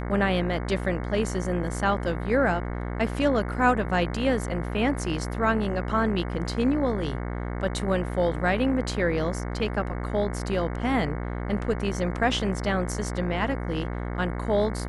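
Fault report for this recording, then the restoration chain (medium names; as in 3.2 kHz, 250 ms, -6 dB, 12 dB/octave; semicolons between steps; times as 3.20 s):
buzz 60 Hz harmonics 37 -31 dBFS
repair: de-hum 60 Hz, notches 37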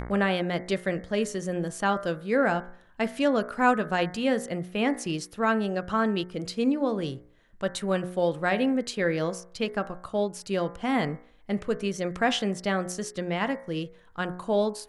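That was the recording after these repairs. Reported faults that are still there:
nothing left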